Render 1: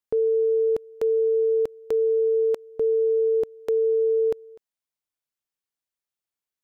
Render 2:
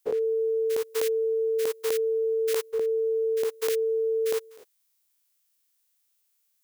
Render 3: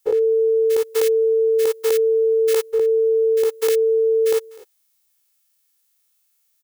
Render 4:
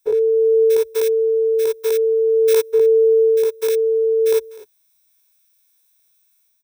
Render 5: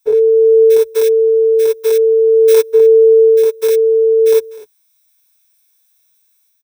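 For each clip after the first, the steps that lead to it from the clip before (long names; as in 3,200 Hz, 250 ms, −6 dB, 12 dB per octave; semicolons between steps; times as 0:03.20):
every bin's largest magnitude spread in time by 120 ms; spectral tilt +4 dB per octave
comb filter 2.3 ms, depth 91%; level +3 dB
EQ curve with evenly spaced ripples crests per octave 1.6, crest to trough 12 dB; automatic gain control gain up to 5 dB; level −3 dB
comb filter 6.8 ms, depth 83%; level +1 dB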